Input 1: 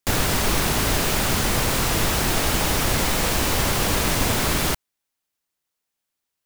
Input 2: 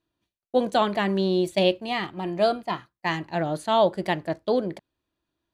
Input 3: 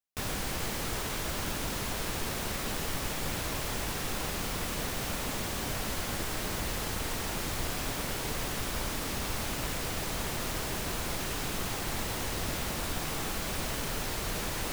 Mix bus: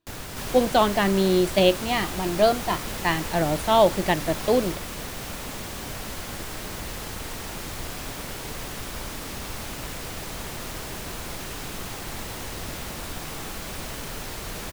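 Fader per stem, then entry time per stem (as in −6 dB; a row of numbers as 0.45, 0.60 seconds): −15.5, +2.5, −0.5 decibels; 0.00, 0.00, 0.20 seconds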